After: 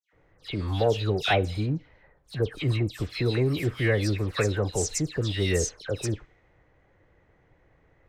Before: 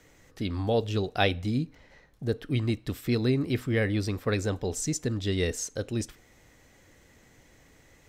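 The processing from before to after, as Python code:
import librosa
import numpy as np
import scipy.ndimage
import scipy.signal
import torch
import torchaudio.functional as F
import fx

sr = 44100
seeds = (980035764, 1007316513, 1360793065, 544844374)

y = fx.leveller(x, sr, passes=1)
y = fx.env_lowpass(y, sr, base_hz=1500.0, full_db=-22.0)
y = fx.peak_eq(y, sr, hz=240.0, db=-11.0, octaves=0.42)
y = fx.dispersion(y, sr, late='lows', ms=129.0, hz=2400.0)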